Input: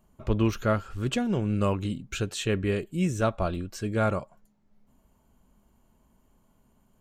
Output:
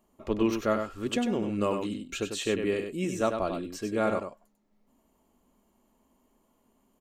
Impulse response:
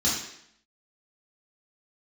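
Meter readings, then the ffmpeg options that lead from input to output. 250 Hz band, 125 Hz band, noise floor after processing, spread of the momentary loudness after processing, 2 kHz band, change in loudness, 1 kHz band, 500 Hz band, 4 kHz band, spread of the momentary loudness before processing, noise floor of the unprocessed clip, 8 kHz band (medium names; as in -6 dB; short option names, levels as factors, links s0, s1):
-1.5 dB, -11.0 dB, -71 dBFS, 6 LU, -2.0 dB, -1.5 dB, -1.0 dB, +0.5 dB, -0.5 dB, 6 LU, -66 dBFS, -0.5 dB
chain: -filter_complex "[0:a]lowshelf=f=190:t=q:w=1.5:g=-10,bandreject=f=1500:w=10,asplit=2[s0][s1];[s1]aecho=0:1:97:0.473[s2];[s0][s2]amix=inputs=2:normalize=0,volume=0.841"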